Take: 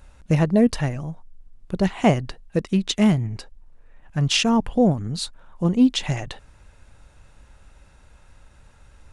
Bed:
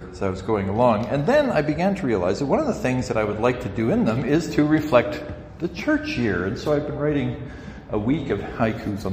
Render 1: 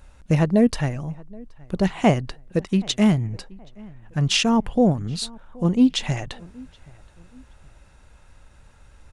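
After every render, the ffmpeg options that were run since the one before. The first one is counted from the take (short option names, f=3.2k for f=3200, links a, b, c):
-filter_complex "[0:a]asplit=2[a][b];[b]adelay=774,lowpass=f=2k:p=1,volume=-24dB,asplit=2[c][d];[d]adelay=774,lowpass=f=2k:p=1,volume=0.39[e];[a][c][e]amix=inputs=3:normalize=0"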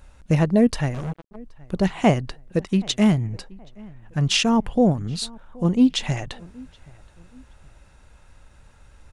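-filter_complex "[0:a]asettb=1/sr,asplit=3[a][b][c];[a]atrim=end=0.944[d];[b]atrim=start=0.94:end=1.36,asetpts=PTS-STARTPTS,afade=t=in:d=0.004:c=qsin,afade=t=out:st=0.416:d=0.004:c=qsin,acrusher=bits=4:mix=0:aa=0.5[e];[c]atrim=start=1.356[f];[d][e]acrossfade=d=0.004:c1=hsin:c2=qsin[g];[g][f]acrossfade=d=0.004:c1=qsin:c2=hsin"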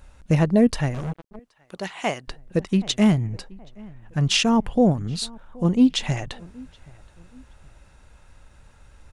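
-filter_complex "[0:a]asettb=1/sr,asplit=3[a][b][c];[a]atrim=end=1.394[d];[b]atrim=start=1.39:end=2.28,asetpts=PTS-STARTPTS,afade=t=in:d=0.004:c=qsin,afade=t=out:st=0.886:d=0.004:c=qsin,highpass=f=1.1k:p=1[e];[c]atrim=start=2.276[f];[d][e]acrossfade=d=0.004:c1=hsin:c2=qsin[g];[g][f]acrossfade=d=0.004:c1=qsin:c2=hsin"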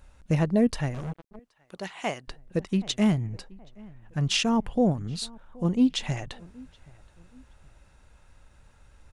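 -af "volume=-5dB"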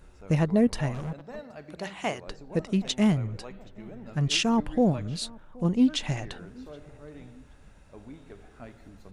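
-filter_complex "[1:a]volume=-24dB[a];[0:a][a]amix=inputs=2:normalize=0"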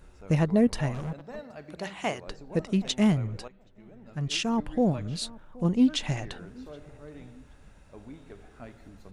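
-filter_complex "[0:a]asplit=2[a][b];[a]atrim=end=3.48,asetpts=PTS-STARTPTS,afade=t=out:st=3.476:d=0.004:c=hsin:silence=0.211349[c];[b]atrim=start=3.48,asetpts=PTS-STARTPTS,afade=t=in:d=1.74:silence=0.211349[d];[c][d]concat=n=2:v=0:a=1"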